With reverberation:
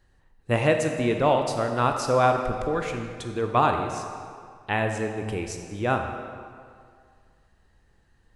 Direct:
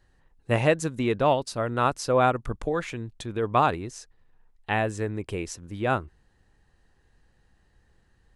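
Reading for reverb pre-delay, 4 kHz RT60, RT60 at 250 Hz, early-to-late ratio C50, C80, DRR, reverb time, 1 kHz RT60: 18 ms, 1.5 s, 2.1 s, 5.0 dB, 6.5 dB, 4.0 dB, 2.1 s, 2.2 s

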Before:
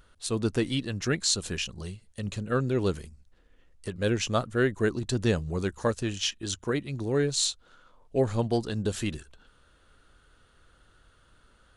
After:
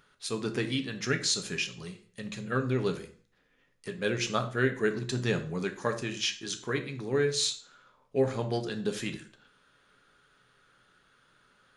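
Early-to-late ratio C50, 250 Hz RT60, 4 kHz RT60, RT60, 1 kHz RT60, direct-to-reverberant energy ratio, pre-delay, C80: 12.5 dB, 0.45 s, 0.40 s, 0.45 s, 0.45 s, 5.5 dB, 3 ms, 17.0 dB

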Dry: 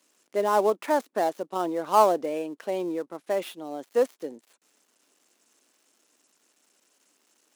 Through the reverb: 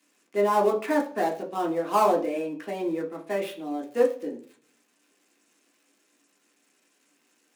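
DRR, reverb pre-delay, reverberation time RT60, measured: −0.5 dB, 3 ms, 0.45 s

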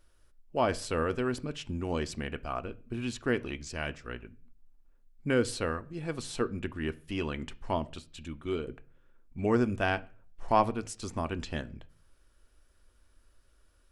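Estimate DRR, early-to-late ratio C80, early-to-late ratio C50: 11.0 dB, 26.5 dB, 22.0 dB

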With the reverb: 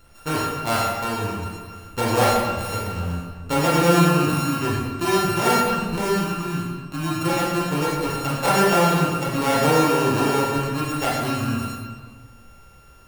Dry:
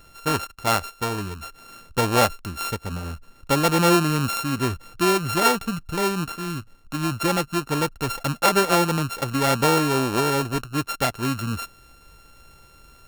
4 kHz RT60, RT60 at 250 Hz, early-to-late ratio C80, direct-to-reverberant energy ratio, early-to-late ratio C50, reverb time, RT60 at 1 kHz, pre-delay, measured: 1.1 s, 1.7 s, 2.0 dB, −6.0 dB, −1.0 dB, 1.6 s, 1.5 s, 15 ms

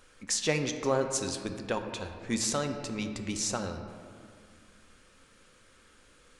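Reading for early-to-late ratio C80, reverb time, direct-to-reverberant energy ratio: 8.0 dB, 2.1 s, 5.5 dB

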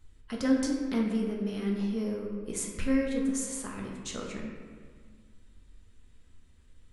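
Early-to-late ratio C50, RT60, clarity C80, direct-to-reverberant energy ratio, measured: 2.5 dB, 1.8 s, 4.0 dB, −1.0 dB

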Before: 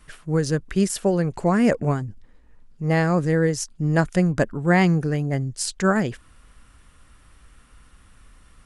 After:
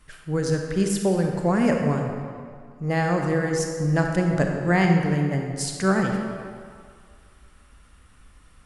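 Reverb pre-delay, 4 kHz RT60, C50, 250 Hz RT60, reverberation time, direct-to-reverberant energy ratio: 32 ms, 1.4 s, 2.5 dB, 1.9 s, 2.1 s, 2.0 dB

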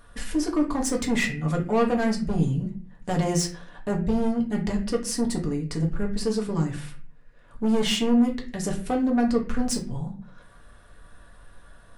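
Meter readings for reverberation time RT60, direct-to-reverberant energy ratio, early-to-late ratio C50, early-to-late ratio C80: 0.45 s, −0.5 dB, 10.0 dB, 14.5 dB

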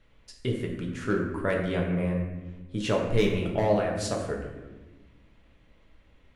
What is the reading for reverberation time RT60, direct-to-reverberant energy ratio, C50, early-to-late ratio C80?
1.2 s, −1.0 dB, 4.0 dB, 6.0 dB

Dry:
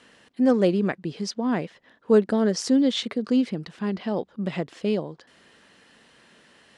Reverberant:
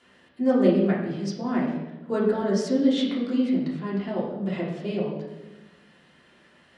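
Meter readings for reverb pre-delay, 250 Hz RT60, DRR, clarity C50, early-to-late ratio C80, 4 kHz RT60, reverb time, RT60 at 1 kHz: 3 ms, 1.5 s, −6.0 dB, 3.0 dB, 5.5 dB, 0.80 s, 1.1 s, 0.95 s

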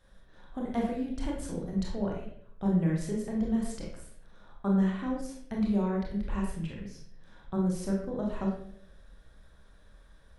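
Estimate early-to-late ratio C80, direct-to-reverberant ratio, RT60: 6.5 dB, −2.5 dB, 0.65 s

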